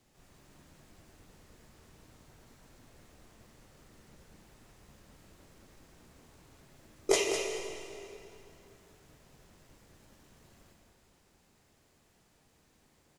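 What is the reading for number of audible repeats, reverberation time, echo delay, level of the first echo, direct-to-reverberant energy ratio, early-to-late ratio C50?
1, 2.9 s, 203 ms, -8.0 dB, 0.5 dB, 1.5 dB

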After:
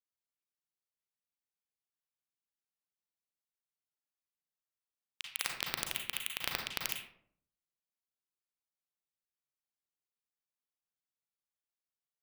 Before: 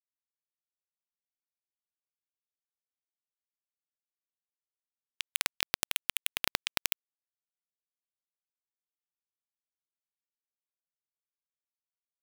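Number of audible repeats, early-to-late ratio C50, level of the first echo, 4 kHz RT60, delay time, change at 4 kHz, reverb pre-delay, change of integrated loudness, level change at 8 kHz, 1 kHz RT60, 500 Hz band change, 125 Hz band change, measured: no echo, 4.0 dB, no echo, 0.35 s, no echo, -4.0 dB, 34 ms, -4.5 dB, -4.5 dB, 0.55 s, -3.5 dB, -0.5 dB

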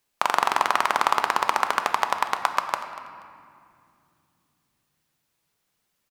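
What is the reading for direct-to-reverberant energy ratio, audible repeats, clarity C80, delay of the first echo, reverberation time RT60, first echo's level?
6.5 dB, 1, 8.5 dB, 240 ms, 2.5 s, -18.0 dB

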